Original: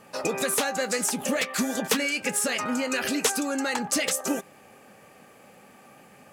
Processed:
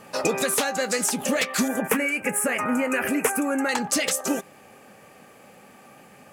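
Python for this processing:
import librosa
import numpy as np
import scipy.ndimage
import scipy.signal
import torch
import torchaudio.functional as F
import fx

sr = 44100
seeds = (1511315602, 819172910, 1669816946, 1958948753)

y = fx.curve_eq(x, sr, hz=(2400.0, 4000.0, 10000.0), db=(0, -24, 0), at=(1.68, 3.69))
y = fx.rider(y, sr, range_db=10, speed_s=0.5)
y = y * librosa.db_to_amplitude(3.0)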